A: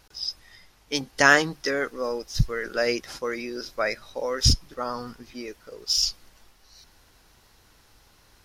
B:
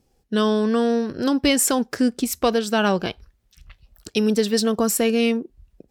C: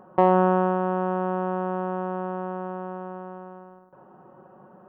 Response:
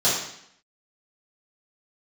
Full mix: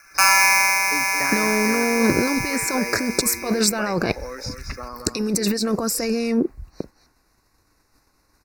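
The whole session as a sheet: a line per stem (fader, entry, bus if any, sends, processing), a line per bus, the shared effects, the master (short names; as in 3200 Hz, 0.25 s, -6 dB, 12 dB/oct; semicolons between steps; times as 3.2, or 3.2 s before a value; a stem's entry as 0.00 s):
-8.0 dB, 0.00 s, no send, echo send -7 dB, expander -44 dBFS; small resonant body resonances 290/1100 Hz, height 7 dB; three-band squash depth 70%
+3.0 dB, 1.00 s, no send, no echo send, gate -51 dBFS, range -10 dB; harmonic-percussive split percussive +7 dB; negative-ratio compressor -25 dBFS, ratio -1
+1.0 dB, 0.00 s, send -14.5 dB, echo send -7 dB, LPF 1200 Hz 24 dB/oct; low-pass opened by the level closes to 490 Hz, open at -15.5 dBFS; polarity switched at an audio rate 1900 Hz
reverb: on, RT60 0.70 s, pre-delay 3 ms
echo: echo 0.223 s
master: Butterworth band-stop 3200 Hz, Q 2.1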